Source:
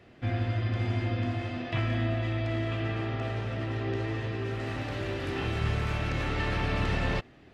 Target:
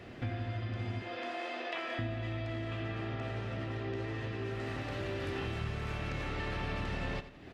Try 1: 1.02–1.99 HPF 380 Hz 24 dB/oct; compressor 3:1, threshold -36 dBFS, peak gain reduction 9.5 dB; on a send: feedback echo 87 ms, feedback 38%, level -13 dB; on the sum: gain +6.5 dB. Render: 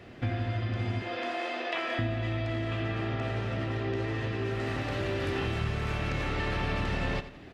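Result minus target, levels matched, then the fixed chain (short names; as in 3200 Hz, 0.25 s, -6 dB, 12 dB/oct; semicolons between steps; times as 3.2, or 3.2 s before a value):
compressor: peak gain reduction -6 dB
1.02–1.99 HPF 380 Hz 24 dB/oct; compressor 3:1, threshold -45 dBFS, peak gain reduction 15.5 dB; on a send: feedback echo 87 ms, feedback 38%, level -13 dB; on the sum: gain +6.5 dB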